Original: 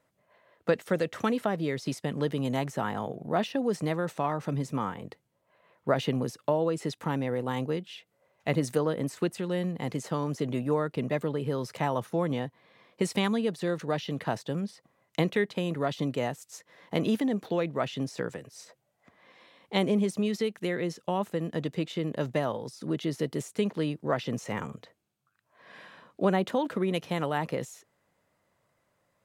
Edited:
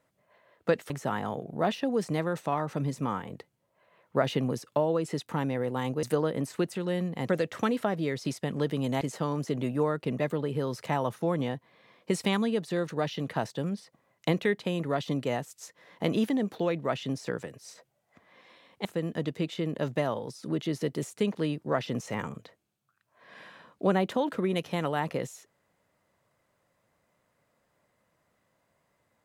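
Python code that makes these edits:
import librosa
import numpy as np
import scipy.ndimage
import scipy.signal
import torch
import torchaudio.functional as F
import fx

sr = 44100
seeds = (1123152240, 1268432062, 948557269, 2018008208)

y = fx.edit(x, sr, fx.move(start_s=0.9, length_s=1.72, to_s=9.92),
    fx.cut(start_s=7.75, length_s=0.91),
    fx.cut(start_s=19.76, length_s=1.47), tone=tone)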